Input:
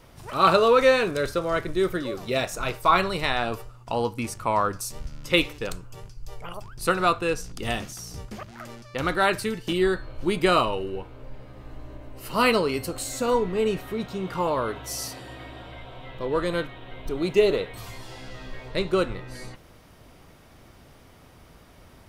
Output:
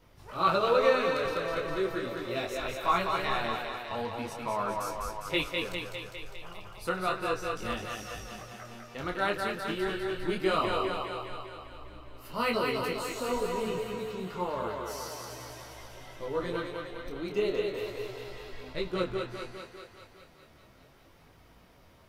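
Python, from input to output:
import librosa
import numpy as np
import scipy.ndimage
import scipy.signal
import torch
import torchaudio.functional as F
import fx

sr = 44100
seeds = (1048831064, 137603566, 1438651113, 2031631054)

y = fx.peak_eq(x, sr, hz=8800.0, db=-5.5, octaves=0.75)
y = fx.echo_thinned(y, sr, ms=202, feedback_pct=68, hz=230.0, wet_db=-3)
y = fx.detune_double(y, sr, cents=13)
y = y * 10.0 ** (-5.0 / 20.0)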